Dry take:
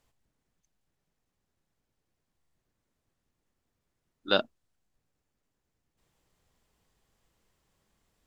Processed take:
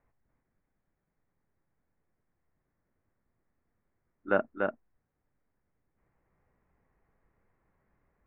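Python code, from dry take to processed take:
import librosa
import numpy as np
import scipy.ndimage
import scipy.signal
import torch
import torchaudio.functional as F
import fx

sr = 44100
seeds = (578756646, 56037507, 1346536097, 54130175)

p1 = scipy.signal.sosfilt(scipy.signal.butter(8, 2200.0, 'lowpass', fs=sr, output='sos'), x)
y = p1 + fx.echo_single(p1, sr, ms=291, db=-4.0, dry=0)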